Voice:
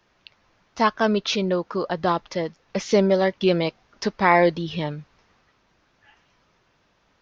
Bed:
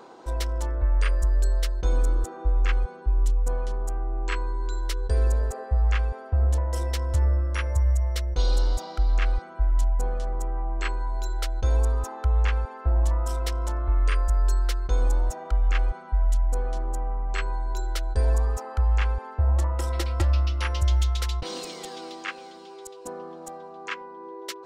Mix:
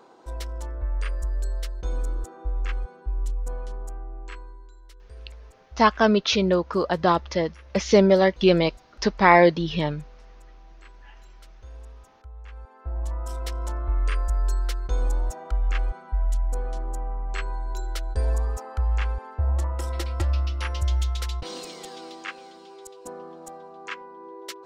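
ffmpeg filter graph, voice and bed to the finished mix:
ffmpeg -i stem1.wav -i stem2.wav -filter_complex "[0:a]adelay=5000,volume=2dB[link_01];[1:a]volume=13.5dB,afade=type=out:start_time=3.76:duration=0.97:silence=0.16788,afade=type=in:start_time=12.45:duration=1.23:silence=0.112202[link_02];[link_01][link_02]amix=inputs=2:normalize=0" out.wav

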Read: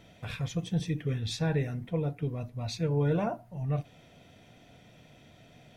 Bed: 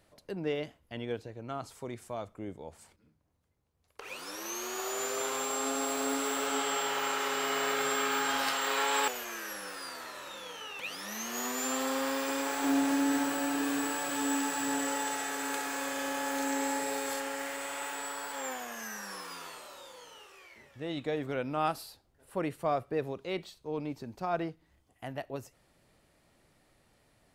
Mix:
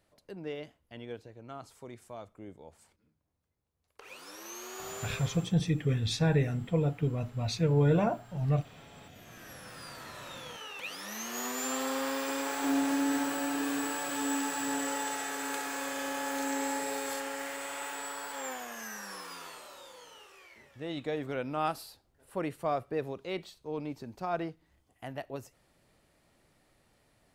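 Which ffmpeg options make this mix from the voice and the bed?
ffmpeg -i stem1.wav -i stem2.wav -filter_complex "[0:a]adelay=4800,volume=2.5dB[link_01];[1:a]volume=21.5dB,afade=type=out:start_time=4.95:duration=0.59:silence=0.0749894,afade=type=in:start_time=9.1:duration=1.22:silence=0.0421697[link_02];[link_01][link_02]amix=inputs=2:normalize=0" out.wav

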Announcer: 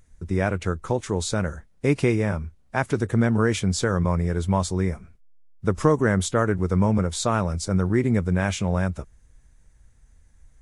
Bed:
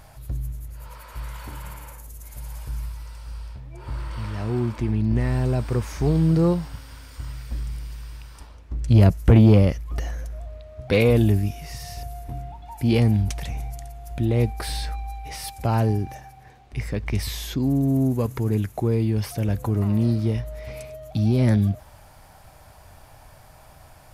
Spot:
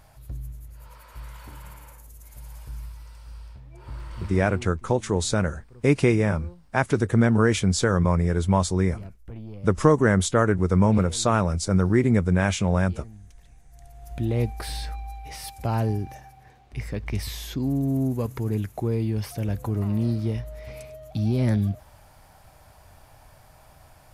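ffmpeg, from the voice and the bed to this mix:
ffmpeg -i stem1.wav -i stem2.wav -filter_complex "[0:a]adelay=4000,volume=1.5dB[link_01];[1:a]volume=16.5dB,afade=type=out:start_time=4.24:duration=0.49:silence=0.1,afade=type=in:start_time=13.69:duration=0.44:silence=0.0749894[link_02];[link_01][link_02]amix=inputs=2:normalize=0" out.wav

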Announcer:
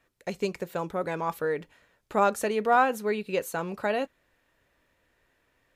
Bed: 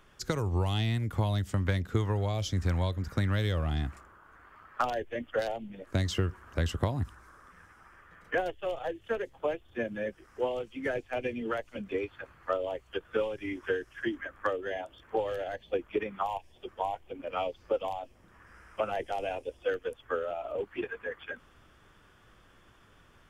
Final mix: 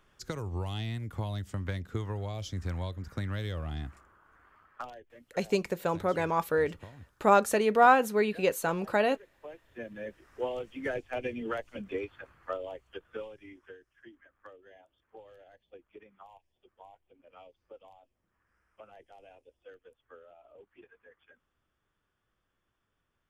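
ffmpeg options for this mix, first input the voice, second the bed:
ffmpeg -i stem1.wav -i stem2.wav -filter_complex "[0:a]adelay=5100,volume=1.5dB[link_01];[1:a]volume=11.5dB,afade=type=out:start_time=4.49:duration=0.54:silence=0.223872,afade=type=in:start_time=9.35:duration=1.28:silence=0.133352,afade=type=out:start_time=11.75:duration=2.02:silence=0.105925[link_02];[link_01][link_02]amix=inputs=2:normalize=0" out.wav

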